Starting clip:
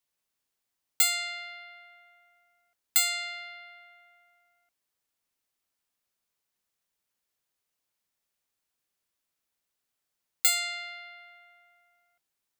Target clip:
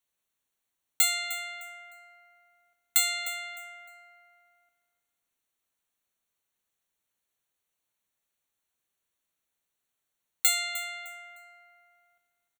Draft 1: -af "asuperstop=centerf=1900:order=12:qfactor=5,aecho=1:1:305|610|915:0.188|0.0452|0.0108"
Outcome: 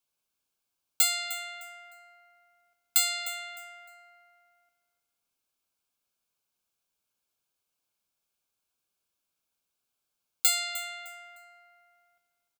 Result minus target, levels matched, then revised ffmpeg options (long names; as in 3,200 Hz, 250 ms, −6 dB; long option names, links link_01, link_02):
2,000 Hz band −3.0 dB
-af "asuperstop=centerf=5000:order=12:qfactor=5,aecho=1:1:305|610|915:0.188|0.0452|0.0108"